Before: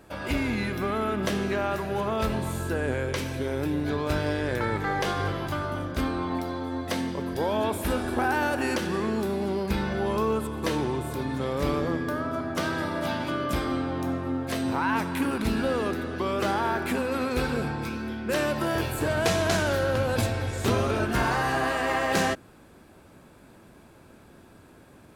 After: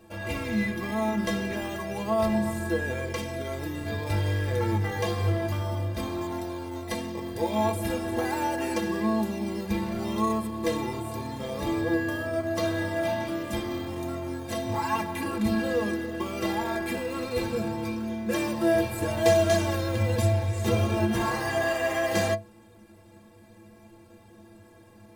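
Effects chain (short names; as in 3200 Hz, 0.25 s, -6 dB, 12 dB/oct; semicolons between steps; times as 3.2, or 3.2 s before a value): notch 1400 Hz, Q 5.4; in parallel at -8 dB: decimation with a swept rate 20×, swing 100% 0.31 Hz; on the sum: metallic resonator 100 Hz, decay 0.31 s, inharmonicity 0.03; gain +7 dB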